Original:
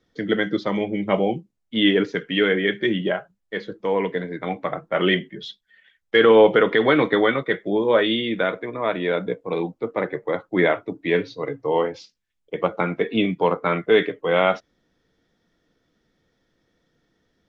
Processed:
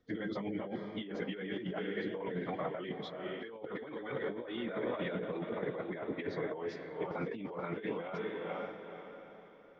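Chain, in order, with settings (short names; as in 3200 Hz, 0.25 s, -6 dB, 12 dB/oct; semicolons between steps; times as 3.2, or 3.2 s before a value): plain phase-vocoder stretch 0.56×; high shelf 2500 Hz -8 dB; diffused feedback echo 0.479 s, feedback 40%, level -12 dB; negative-ratio compressor -31 dBFS, ratio -1; gain -8 dB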